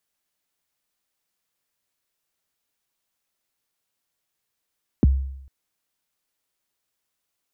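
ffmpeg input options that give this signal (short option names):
-f lavfi -i "aevalsrc='0.316*pow(10,-3*t/0.78)*sin(2*PI*(370*0.021/log(67/370)*(exp(log(67/370)*min(t,0.021)/0.021)-1)+67*max(t-0.021,0)))':d=0.45:s=44100"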